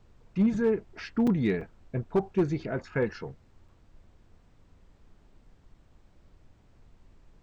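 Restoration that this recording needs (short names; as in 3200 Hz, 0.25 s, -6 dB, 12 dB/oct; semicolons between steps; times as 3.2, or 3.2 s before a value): clip repair -17.5 dBFS; interpolate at 1.27/1.61/3.68, 4.4 ms; noise print and reduce 13 dB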